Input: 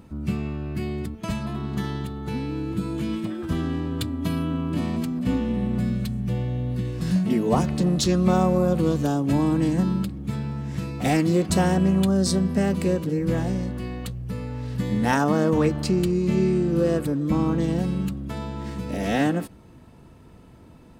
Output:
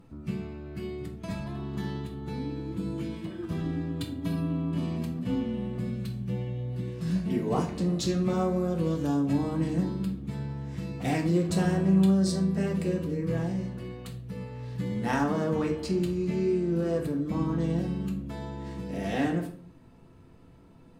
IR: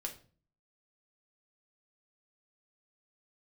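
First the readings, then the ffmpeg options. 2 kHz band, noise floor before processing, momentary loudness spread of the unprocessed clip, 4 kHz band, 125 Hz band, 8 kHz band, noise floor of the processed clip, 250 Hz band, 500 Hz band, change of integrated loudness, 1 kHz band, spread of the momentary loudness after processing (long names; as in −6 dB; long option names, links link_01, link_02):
−6.5 dB, −48 dBFS, 10 LU, −7.5 dB, −5.0 dB, −9.0 dB, −53 dBFS, −5.5 dB, −5.5 dB, −5.5 dB, −7.5 dB, 11 LU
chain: -filter_complex "[0:a]highshelf=frequency=6700:gain=-4[link_01];[1:a]atrim=start_sample=2205,asetrate=34839,aresample=44100[link_02];[link_01][link_02]afir=irnorm=-1:irlink=0,volume=-6.5dB"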